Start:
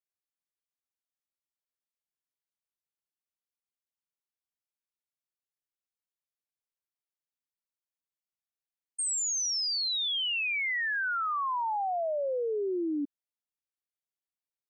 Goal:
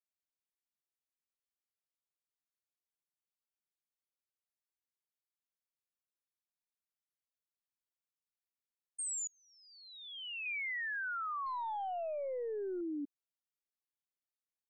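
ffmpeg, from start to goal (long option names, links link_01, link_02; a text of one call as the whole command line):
ffmpeg -i in.wav -filter_complex "[0:a]asettb=1/sr,asplit=3[link_01][link_02][link_03];[link_01]atrim=end=9.274[link_04];[link_02]atrim=start=9.27:end=10.46,asetpts=PTS-STARTPTS,afade=type=in:duration=0.004:curve=qsin,afade=type=out:start_time=1.186:duration=0.004:curve=qsin,lowpass=frequency=2600:width=0.5412,lowpass=frequency=2600:width=1.3066[link_05];[link_03]atrim=start=10.456[link_06];[link_04][link_05]acrossfade=duration=0.004:curve1=hsin:curve2=qsin[link_07];[link_07][link_06]acrossfade=duration=0.004:curve1=qsin:curve2=hsin,asettb=1/sr,asplit=3[link_08][link_09][link_10];[link_08]atrim=end=11.464[link_11];[link_09]atrim=start=11.46:end=12.81,asetpts=PTS-STARTPTS,afade=type=in:duration=0.004:curve=qsin,afade=type=out:start_time=1.346:duration=0.004:curve=qsin,aeval=exprs='0.0447*(cos(1*acos(clip(val(0)/0.0447,-1,1)))-cos(1*PI/2))+0.00178*(cos(4*acos(clip(val(0)/0.0447,-1,1)))-cos(4*PI/2))':channel_layout=same[link_12];[link_10]atrim=start=12.806[link_13];[link_11][link_12]acrossfade=duration=0.004:curve1=hsin:curve2=qsin[link_14];[link_14][link_13]acrossfade=duration=0.004:curve1=qsin:curve2=hsin,volume=-8dB" out.wav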